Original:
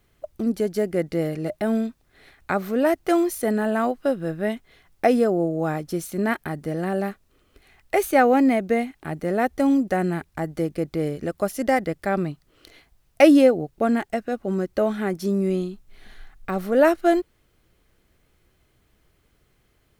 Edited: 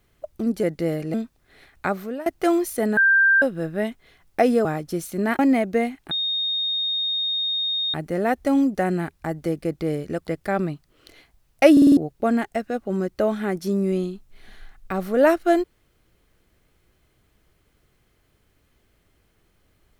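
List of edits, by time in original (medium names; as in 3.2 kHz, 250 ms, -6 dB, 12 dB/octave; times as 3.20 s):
0.63–0.96 s: delete
1.47–1.79 s: delete
2.52–2.91 s: fade out, to -22 dB
3.62–4.07 s: bleep 1.58 kHz -13 dBFS
5.30–5.65 s: delete
6.39–8.35 s: delete
9.07 s: add tone 3.7 kHz -21.5 dBFS 1.83 s
11.40–11.85 s: delete
13.30 s: stutter in place 0.05 s, 5 plays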